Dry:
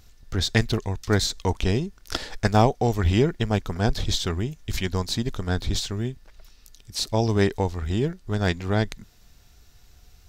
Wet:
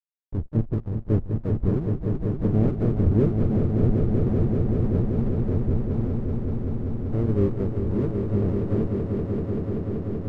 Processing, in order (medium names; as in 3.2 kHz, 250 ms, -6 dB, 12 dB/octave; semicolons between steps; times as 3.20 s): inverse Chebyshev low-pass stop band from 1.5 kHz, stop band 60 dB; harmony voices +5 st -11 dB; hysteresis with a dead band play -29 dBFS; on a send: echo with a slow build-up 192 ms, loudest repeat 5, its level -7 dB; on the sum: trim -1 dB